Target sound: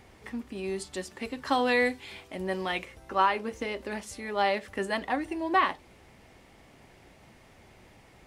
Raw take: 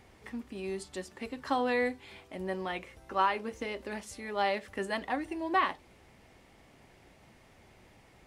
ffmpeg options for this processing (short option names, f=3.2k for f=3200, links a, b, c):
-filter_complex "[0:a]asplit=3[a][b][c];[a]afade=t=out:st=0.75:d=0.02[d];[b]adynamicequalizer=threshold=0.00631:dfrequency=1900:dqfactor=0.7:tfrequency=1900:tqfactor=0.7:attack=5:release=100:ratio=0.375:range=3:mode=boostabove:tftype=highshelf,afade=t=in:st=0.75:d=0.02,afade=t=out:st=2.84:d=0.02[e];[c]afade=t=in:st=2.84:d=0.02[f];[d][e][f]amix=inputs=3:normalize=0,volume=3.5dB"